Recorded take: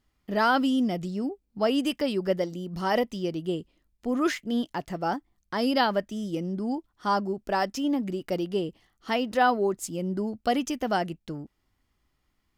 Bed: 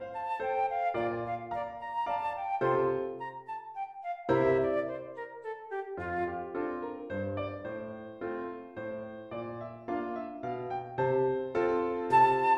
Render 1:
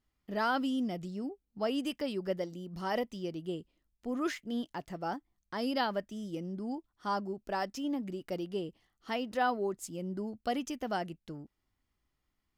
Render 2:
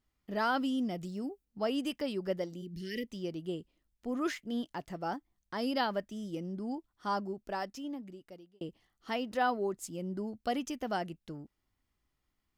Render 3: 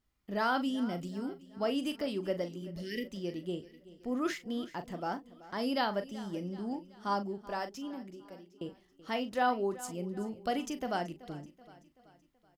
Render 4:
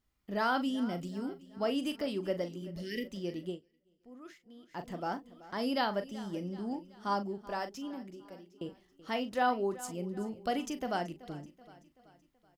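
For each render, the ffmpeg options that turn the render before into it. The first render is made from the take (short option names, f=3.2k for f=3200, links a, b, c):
-af "volume=-8dB"
-filter_complex "[0:a]asettb=1/sr,asplit=3[a][b][c];[a]atrim=end=0.984[d];[b]atrim=start=0.98:end=1.45,asetpts=PTS-STARTPTS,afade=t=in:d=0.004:c=qsin,afade=t=out:st=0.466:d=0.004:c=qsin,highshelf=f=8.4k:g=9[e];[c]atrim=start=1.446[f];[d][e]acrossfade=d=0.004:c1=hsin:c2=qsin[g];[g][f]acrossfade=d=0.004:c1=qsin:c2=hsin,asplit=3[h][i][j];[h]afade=t=out:st=2.61:d=0.02[k];[i]asuperstop=centerf=910:order=12:qfactor=0.67,afade=t=in:st=2.61:d=0.02,afade=t=out:st=3.07:d=0.02[l];[j]afade=t=in:st=3.07:d=0.02[m];[k][l][m]amix=inputs=3:normalize=0,asplit=2[n][o];[n]atrim=end=8.61,asetpts=PTS-STARTPTS,afade=t=out:st=7.22:d=1.39[p];[o]atrim=start=8.61,asetpts=PTS-STARTPTS,afade=t=in:d=0.004:c=hsin[q];[p][q]concat=n=2:v=0:a=1"
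-filter_complex "[0:a]asplit=2[a][b];[b]adelay=40,volume=-10.5dB[c];[a][c]amix=inputs=2:normalize=0,aecho=1:1:380|760|1140|1520:0.126|0.0629|0.0315|0.0157"
-filter_complex "[0:a]asplit=3[a][b][c];[a]atrim=end=3.6,asetpts=PTS-STARTPTS,afade=t=out:st=3.48:d=0.12:silence=0.125893[d];[b]atrim=start=3.6:end=4.68,asetpts=PTS-STARTPTS,volume=-18dB[e];[c]atrim=start=4.68,asetpts=PTS-STARTPTS,afade=t=in:d=0.12:silence=0.125893[f];[d][e][f]concat=n=3:v=0:a=1"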